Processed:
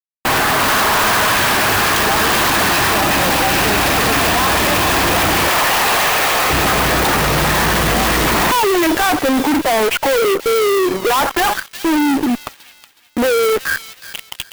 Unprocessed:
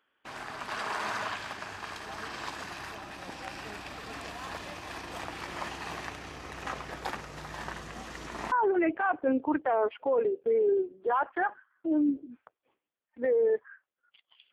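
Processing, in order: 5.48–6.5 HPF 490 Hz 24 dB/oct; in parallel at +2 dB: compressor, threshold -37 dBFS, peak gain reduction 13.5 dB; on the sum: fuzz box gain 49 dB, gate -51 dBFS; thin delay 0.368 s, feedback 32%, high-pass 3200 Hz, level -6 dB; clock jitter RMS 0.031 ms

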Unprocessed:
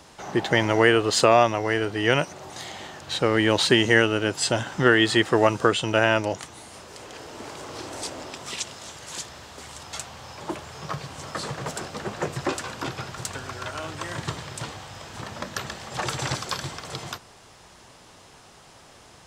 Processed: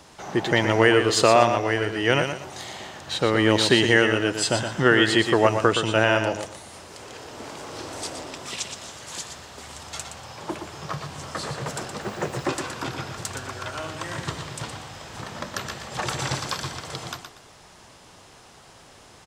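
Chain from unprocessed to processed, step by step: 12.01–12.43 added noise blue -62 dBFS; on a send: feedback echo 0.119 s, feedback 26%, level -7.5 dB

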